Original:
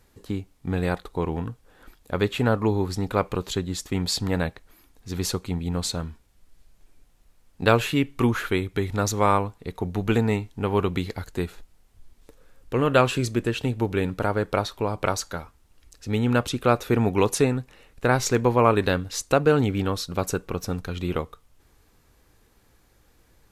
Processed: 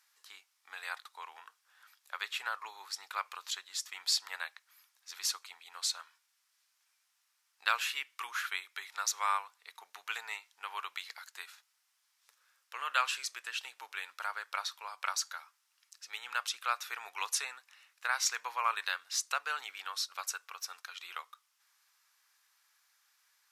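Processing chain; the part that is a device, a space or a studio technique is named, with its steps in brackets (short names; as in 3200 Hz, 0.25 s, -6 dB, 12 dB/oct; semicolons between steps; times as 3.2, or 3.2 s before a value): headphones lying on a table (HPF 1100 Hz 24 dB/oct; bell 5400 Hz +5 dB 0.47 oct); gain -5.5 dB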